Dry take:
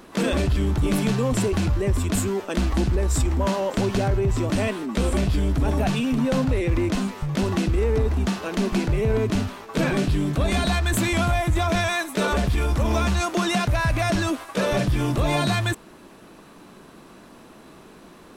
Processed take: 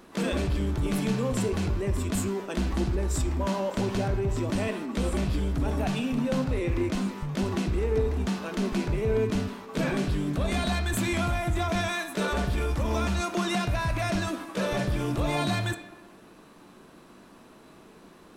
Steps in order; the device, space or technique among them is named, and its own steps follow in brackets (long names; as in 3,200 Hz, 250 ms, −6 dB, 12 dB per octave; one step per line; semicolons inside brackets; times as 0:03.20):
filtered reverb send (on a send: high-pass filter 170 Hz 24 dB per octave + low-pass filter 8,100 Hz + convolution reverb RT60 1.2 s, pre-delay 8 ms, DRR 7 dB)
on the sum: level −6 dB